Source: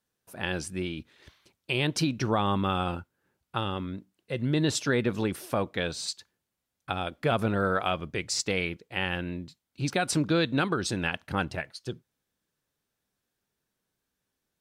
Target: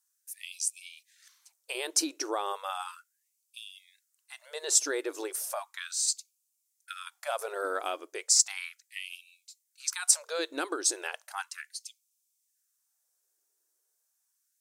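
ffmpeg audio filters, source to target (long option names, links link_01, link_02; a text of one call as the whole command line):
ffmpeg -i in.wav -af "highshelf=frequency=4800:width_type=q:width=1.5:gain=13,afftfilt=real='re*gte(b*sr/1024,270*pow(2300/270,0.5+0.5*sin(2*PI*0.35*pts/sr)))':imag='im*gte(b*sr/1024,270*pow(2300/270,0.5+0.5*sin(2*PI*0.35*pts/sr)))':win_size=1024:overlap=0.75,volume=-4.5dB" out.wav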